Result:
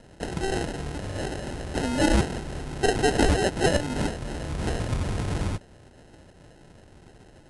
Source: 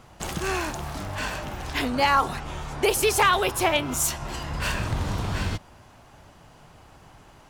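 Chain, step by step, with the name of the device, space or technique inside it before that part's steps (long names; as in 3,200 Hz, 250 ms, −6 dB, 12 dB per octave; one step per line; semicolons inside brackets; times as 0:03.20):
crushed at another speed (tape speed factor 2×; decimation without filtering 19×; tape speed factor 0.5×)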